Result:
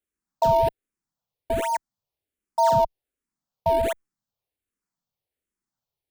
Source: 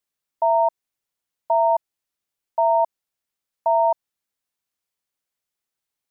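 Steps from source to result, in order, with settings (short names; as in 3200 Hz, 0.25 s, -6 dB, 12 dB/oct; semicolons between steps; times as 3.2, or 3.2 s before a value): tilt shelf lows +4.5 dB, about 680 Hz; in parallel at -7.5 dB: decimation with a swept rate 39×, swing 160% 2.2 Hz; on the sum: endless phaser -1.3 Hz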